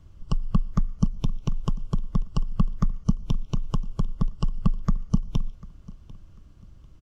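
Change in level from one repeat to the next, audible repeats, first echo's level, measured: -11.0 dB, 2, -21.0 dB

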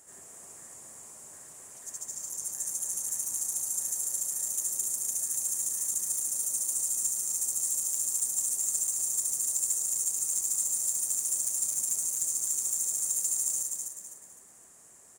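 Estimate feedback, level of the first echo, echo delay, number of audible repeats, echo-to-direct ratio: 36%, -4.0 dB, 254 ms, 4, -3.5 dB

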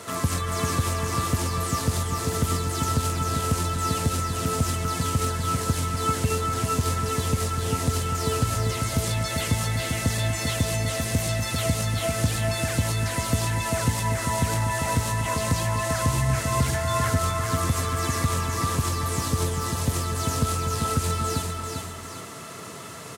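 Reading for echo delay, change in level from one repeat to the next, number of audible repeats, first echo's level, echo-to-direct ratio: 394 ms, -6.5 dB, 2, -4.5 dB, -3.5 dB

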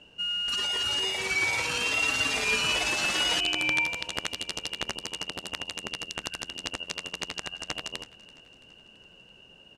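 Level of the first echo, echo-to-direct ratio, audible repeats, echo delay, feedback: -22.0 dB, -20.0 dB, 3, 334 ms, 59%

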